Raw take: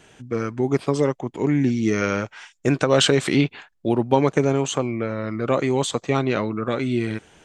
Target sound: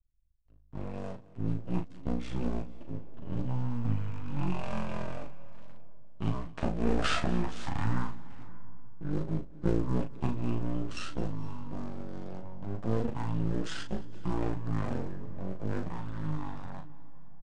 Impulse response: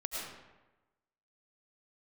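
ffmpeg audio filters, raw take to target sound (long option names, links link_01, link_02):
-filter_complex "[0:a]highshelf=frequency=7200:gain=-6,acrossover=split=130[link_01][link_02];[link_01]acompressor=threshold=-46dB:ratio=6[link_03];[link_02]aeval=exprs='sgn(val(0))*max(abs(val(0))-0.0133,0)':channel_layout=same[link_04];[link_03][link_04]amix=inputs=2:normalize=0,flanger=delay=2.1:depth=3.7:regen=-1:speed=0.5:shape=triangular,aeval=exprs='max(val(0),0)':channel_layout=same,asplit=2[link_05][link_06];[link_06]adelay=16,volume=-7dB[link_07];[link_05][link_07]amix=inputs=2:normalize=0,asplit=2[link_08][link_09];[1:a]atrim=start_sample=2205,adelay=94[link_10];[link_09][link_10]afir=irnorm=-1:irlink=0,volume=-19dB[link_11];[link_08][link_11]amix=inputs=2:normalize=0,asetrate=18846,aresample=44100,adynamicequalizer=threshold=0.00178:dfrequency=4200:dqfactor=0.7:tfrequency=4200:tqfactor=0.7:attack=5:release=100:ratio=0.375:range=3.5:mode=boostabove:tftype=highshelf,volume=-4.5dB"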